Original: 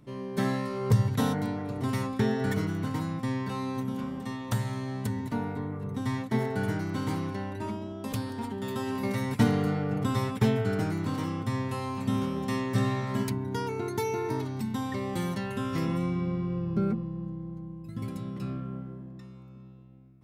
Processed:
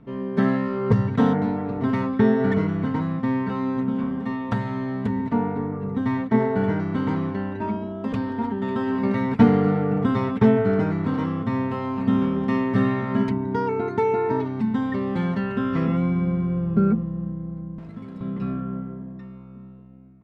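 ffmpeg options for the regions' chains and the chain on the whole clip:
ffmpeg -i in.wav -filter_complex "[0:a]asettb=1/sr,asplit=3[link_01][link_02][link_03];[link_01]atrim=end=17.784[link_04];[link_02]atrim=start=17.78:end=18.21,asetpts=PTS-STARTPTS,afade=type=in:duration=0.004:curve=qsin,afade=type=out:start_time=0.426:duration=0.004:curve=qsin,aeval=exprs='val(0)+0.5*0.00631*sgn(val(0))':channel_layout=same,highshelf=frequency=7500:gain=11,acrossover=split=230|700[link_05][link_06][link_07];[link_05]acompressor=threshold=-47dB:ratio=4[link_08];[link_06]acompressor=threshold=-49dB:ratio=4[link_09];[link_07]acompressor=threshold=-54dB:ratio=4[link_10];[link_08][link_09][link_10]amix=inputs=3:normalize=0[link_11];[link_03]atrim=start=18.206[link_12];[link_04][link_11]acrossfade=duration=0.004:curve1=hsin:curve2=qsin[link_13];[link_13][link_12]acrossfade=duration=0.004:curve1=qsin:curve2=hsin,lowpass=2000,aecho=1:1:4.4:0.49,volume=6.5dB" out.wav

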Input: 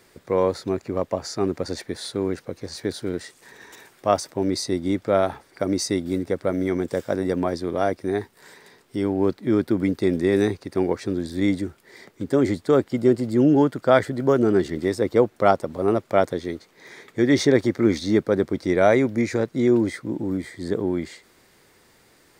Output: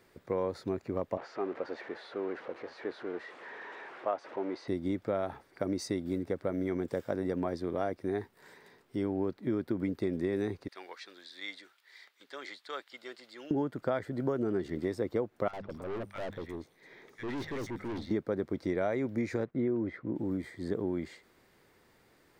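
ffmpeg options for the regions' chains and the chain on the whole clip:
ffmpeg -i in.wav -filter_complex "[0:a]asettb=1/sr,asplit=3[link_01][link_02][link_03];[link_01]atrim=end=1.174[link_04];[link_02]atrim=start=1.17:end=4.68,asetpts=PTS-STARTPTS,afade=type=in:duration=0.004:curve=qsin,afade=type=out:start_time=3.506:duration=0.004:curve=qsin,aeval=exprs='val(0)+0.5*0.0282*sgn(val(0))':channel_layout=same,highpass=440,lowpass=2100[link_05];[link_03]atrim=start=4.676[link_06];[link_04][link_05]acrossfade=duration=0.004:curve1=hsin:curve2=qsin[link_07];[link_07][link_06]acrossfade=duration=0.004:curve1=qsin:curve2=hsin,asettb=1/sr,asplit=3[link_08][link_09][link_10];[link_08]atrim=end=10.684[link_11];[link_09]atrim=start=10.68:end=13.51,asetpts=PTS-STARTPTS,afade=type=in:duration=0.004:curve=qsin,afade=type=out:start_time=2.826:duration=0.004:curve=qsin,acrossover=split=7000[link_12][link_13];[link_13]acompressor=threshold=-59dB:ratio=4:attack=1:release=60[link_14];[link_12][link_14]amix=inputs=2:normalize=0,highpass=1400,equalizer=frequency=3800:width_type=o:width=0.87:gain=7[link_15];[link_10]atrim=start=13.506[link_16];[link_11][link_15]acrossfade=duration=0.004:curve1=hsin:curve2=qsin[link_17];[link_17][link_16]acrossfade=duration=0.004:curve1=qsin:curve2=hsin,asettb=1/sr,asplit=3[link_18][link_19][link_20];[link_18]atrim=end=15.484[link_21];[link_19]atrim=start=15.48:end=18.11,asetpts=PTS-STARTPTS,afade=type=in:duration=0.004:curve=qsin,afade=type=out:start_time=2.626:duration=0.004:curve=qsin,bandreject=frequency=50:width_type=h:width=6,bandreject=frequency=100:width_type=h:width=6,bandreject=frequency=150:width_type=h:width=6,bandreject=frequency=200:width_type=h:width=6,acrossover=split=1300|5200[link_22][link_23][link_24];[link_22]adelay=50[link_25];[link_24]adelay=220[link_26];[link_25][link_23][link_26]amix=inputs=3:normalize=0,atrim=end_sample=115983,aeval=exprs='(tanh(25.1*val(0)+0.4)-tanh(0.4))/25.1':channel_layout=same[link_27];[link_20]atrim=start=18.106[link_28];[link_21][link_27]acrossfade=duration=0.004:curve1=hsin:curve2=qsin[link_29];[link_29][link_28]acrossfade=duration=0.004:curve1=qsin:curve2=hsin,asettb=1/sr,asplit=3[link_30][link_31][link_32];[link_30]atrim=end=19.454[link_33];[link_31]atrim=start=19.45:end=20.16,asetpts=PTS-STARTPTS,afade=type=in:duration=0.004:curve=qsin,afade=type=out:start_time=0.706:duration=0.004:curve=qsin,lowpass=2100,agate=range=-12dB:threshold=-51dB:ratio=16:release=100:detection=peak,bandreject=frequency=870:width=13[link_34];[link_32]atrim=start=20.156[link_35];[link_33][link_34]acrossfade=duration=0.004:curve1=hsin:curve2=qsin[link_36];[link_36][link_35]acrossfade=duration=0.004:curve1=qsin:curve2=hsin,equalizer=frequency=8100:width_type=o:width=2.1:gain=-8,acompressor=threshold=-21dB:ratio=6,volume=-6.5dB" out.wav

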